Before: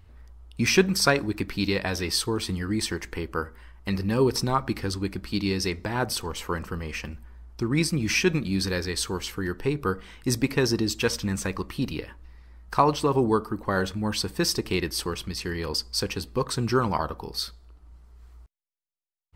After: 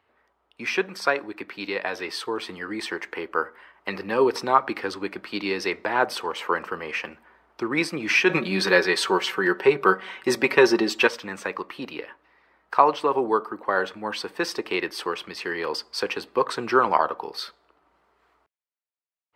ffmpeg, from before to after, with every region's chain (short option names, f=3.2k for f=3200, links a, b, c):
-filter_complex "[0:a]asettb=1/sr,asplit=3[a][b][c];[a]atrim=end=8.294[d];[b]atrim=start=8.29:end=11.07,asetpts=PTS-STARTPTS,afade=t=in:d=0.004:c=qsin,afade=t=out:st=2.776:d=0.004:c=qsin,aecho=1:1:5.3:0.58,atrim=end_sample=122598,acontrast=31[e];[c]atrim=start=11.066[f];[d][e]acrossfade=d=0.004:c1=hsin:c2=qsin[g];[g][f]acrossfade=d=0.004:c1=qsin:c2=hsin,highpass=170,acrossover=split=380 3200:gain=0.126 1 0.141[h][i][j];[h][i][j]amix=inputs=3:normalize=0,dynaudnorm=f=460:g=9:m=9dB"